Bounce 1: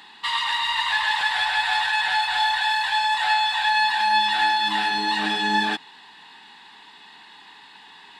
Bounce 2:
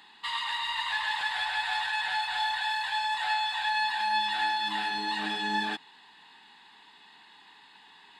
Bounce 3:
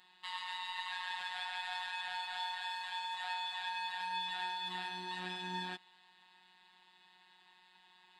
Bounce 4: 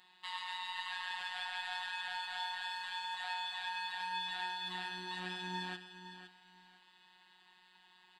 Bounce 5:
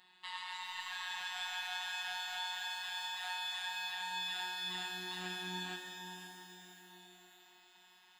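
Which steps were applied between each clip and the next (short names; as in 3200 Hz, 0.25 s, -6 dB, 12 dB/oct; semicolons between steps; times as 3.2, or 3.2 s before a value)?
notch 5700 Hz, Q 12; gain -8 dB
robotiser 182 Hz; gain -7.5 dB
feedback echo 0.511 s, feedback 23%, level -11 dB
shimmer reverb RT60 3.9 s, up +12 st, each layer -8 dB, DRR 5 dB; gain -1 dB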